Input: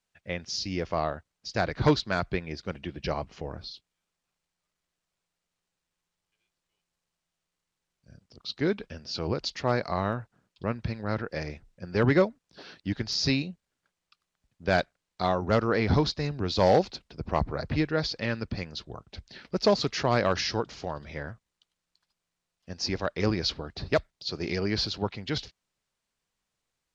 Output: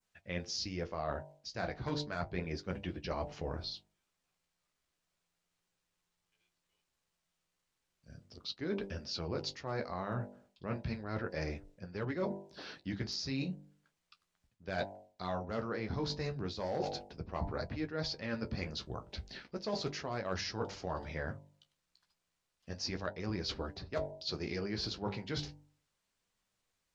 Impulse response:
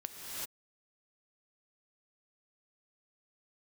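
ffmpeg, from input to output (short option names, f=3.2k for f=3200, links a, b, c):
-af "bandreject=f=49.13:t=h:w=4,bandreject=f=98.26:t=h:w=4,bandreject=f=147.39:t=h:w=4,bandreject=f=196.52:t=h:w=4,bandreject=f=245.65:t=h:w=4,bandreject=f=294.78:t=h:w=4,bandreject=f=343.91:t=h:w=4,bandreject=f=393.04:t=h:w=4,bandreject=f=442.17:t=h:w=4,bandreject=f=491.3:t=h:w=4,bandreject=f=540.43:t=h:w=4,bandreject=f=589.56:t=h:w=4,bandreject=f=638.69:t=h:w=4,bandreject=f=687.82:t=h:w=4,bandreject=f=736.95:t=h:w=4,bandreject=f=786.08:t=h:w=4,bandreject=f=835.21:t=h:w=4,bandreject=f=884.34:t=h:w=4,bandreject=f=933.47:t=h:w=4,bandreject=f=982.6:t=h:w=4,flanger=delay=10:depth=5.6:regen=-40:speed=0.34:shape=sinusoidal,areverse,acompressor=threshold=-37dB:ratio=12,areverse,adynamicequalizer=threshold=0.00126:dfrequency=3400:dqfactor=1.1:tfrequency=3400:tqfactor=1.1:attack=5:release=100:ratio=0.375:range=2.5:mode=cutabove:tftype=bell,volume=4dB"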